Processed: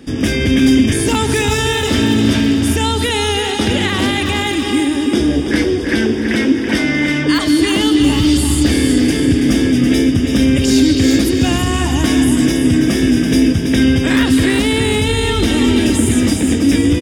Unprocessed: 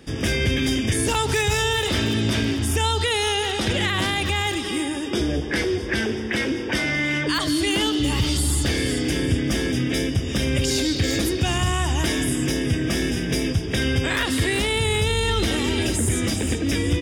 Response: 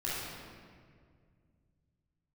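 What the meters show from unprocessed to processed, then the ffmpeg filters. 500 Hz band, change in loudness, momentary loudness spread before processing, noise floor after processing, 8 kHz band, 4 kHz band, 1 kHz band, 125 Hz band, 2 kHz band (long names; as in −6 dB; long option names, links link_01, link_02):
+7.0 dB, +8.5 dB, 3 LU, −18 dBFS, +5.0 dB, +5.0 dB, +5.0 dB, +5.5 dB, +5.0 dB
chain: -af "equalizer=frequency=260:width_type=o:width=0.61:gain=10.5,aecho=1:1:330|660|990|1320|1650:0.447|0.192|0.0826|0.0355|0.0153,volume=4dB"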